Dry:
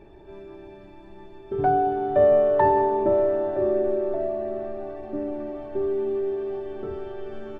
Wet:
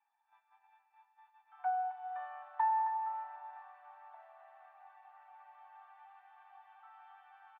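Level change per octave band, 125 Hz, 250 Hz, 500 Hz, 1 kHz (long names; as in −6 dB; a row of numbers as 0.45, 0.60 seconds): below −40 dB, below −40 dB, −35.5 dB, −10.0 dB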